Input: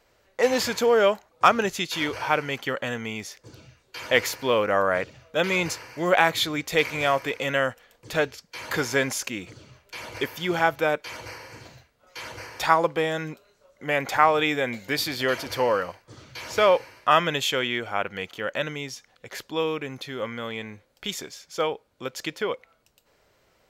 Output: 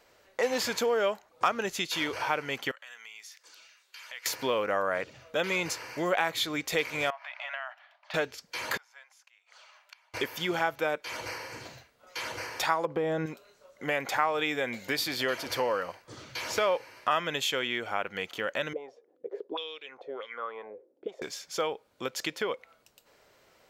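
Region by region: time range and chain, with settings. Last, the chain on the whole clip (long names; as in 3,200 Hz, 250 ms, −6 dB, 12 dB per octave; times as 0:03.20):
0:02.71–0:04.26: high-pass filter 1,400 Hz + downward compressor 2.5 to 1, threshold −52 dBFS
0:07.10–0:08.14: downward compressor 4 to 1, threshold −30 dBFS + linear-phase brick-wall high-pass 580 Hz + high-frequency loss of the air 300 metres
0:08.77–0:10.14: Butterworth high-pass 710 Hz + high-shelf EQ 5,200 Hz −10.5 dB + gate with flip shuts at −32 dBFS, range −28 dB
0:12.85–0:13.26: tilt shelving filter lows +9 dB, about 1,300 Hz + downward compressor 4 to 1, threshold −20 dBFS
0:18.73–0:21.22: parametric band 460 Hz +14.5 dB 1.4 octaves + envelope filter 250–3,600 Hz, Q 5.3, up, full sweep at −14 dBFS
whole clip: low-shelf EQ 140 Hz −10.5 dB; downward compressor 2 to 1, threshold −34 dBFS; level +2.5 dB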